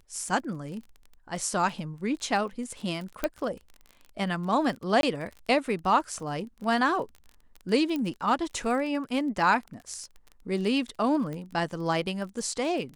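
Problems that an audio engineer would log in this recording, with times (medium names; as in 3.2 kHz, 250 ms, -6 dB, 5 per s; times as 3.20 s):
crackle 26 per s -36 dBFS
3.24 s: pop -12 dBFS
5.01–5.03 s: dropout 22 ms
7.96 s: pop -19 dBFS
11.33 s: pop -25 dBFS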